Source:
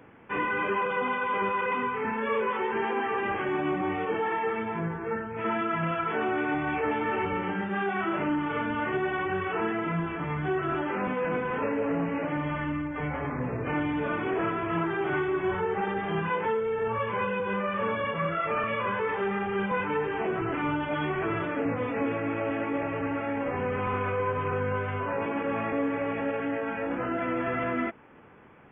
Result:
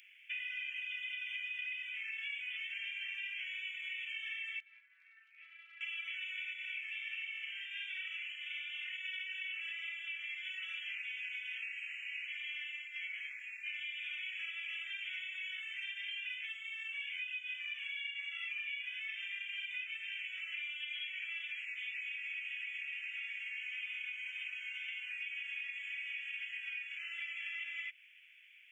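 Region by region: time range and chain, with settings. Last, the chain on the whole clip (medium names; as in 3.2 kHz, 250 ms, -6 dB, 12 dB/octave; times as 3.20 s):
4.60–5.81 s: low-pass 1 kHz + compression 4:1, threshold -33 dBFS
6.53–9.05 s: flange 1.3 Hz, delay 2.9 ms, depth 7.9 ms, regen +29% + flutter echo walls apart 9.2 m, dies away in 0.38 s
whole clip: steep high-pass 2.3 kHz 48 dB/octave; compression, threshold -48 dBFS; trim +9 dB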